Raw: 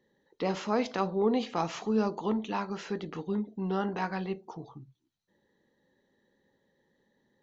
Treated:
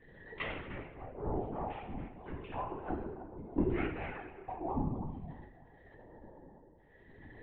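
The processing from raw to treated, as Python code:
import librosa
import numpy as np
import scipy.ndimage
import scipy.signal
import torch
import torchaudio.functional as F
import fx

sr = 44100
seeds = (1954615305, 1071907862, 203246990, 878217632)

y = np.minimum(x, 2.0 * 10.0 ** (-23.0 / 20.0) - x)
y = fx.comb(y, sr, ms=2.8, depth=0.73, at=(2.13, 4.68))
y = fx.gate_flip(y, sr, shuts_db=-30.0, range_db=-26)
y = fx.filter_lfo_lowpass(y, sr, shape='square', hz=0.59, low_hz=830.0, high_hz=2300.0, q=2.5)
y = 10.0 ** (-29.5 / 20.0) * np.tanh(y / 10.0 ** (-29.5 / 20.0))
y = fx.tremolo_shape(y, sr, shape='triangle', hz=0.85, depth_pct=90)
y = fx.echo_banded(y, sr, ms=308, feedback_pct=52, hz=630.0, wet_db=-11.5)
y = fx.room_shoebox(y, sr, seeds[0], volume_m3=330.0, walls='mixed', distance_m=1.8)
y = fx.lpc_vocoder(y, sr, seeds[1], excitation='whisper', order=16)
y = F.gain(torch.from_numpy(y), 12.0).numpy()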